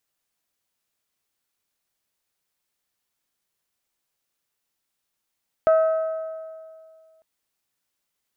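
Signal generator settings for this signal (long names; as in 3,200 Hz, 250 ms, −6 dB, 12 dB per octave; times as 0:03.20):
struck metal bell, lowest mode 642 Hz, decay 2.13 s, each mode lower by 11.5 dB, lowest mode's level −12.5 dB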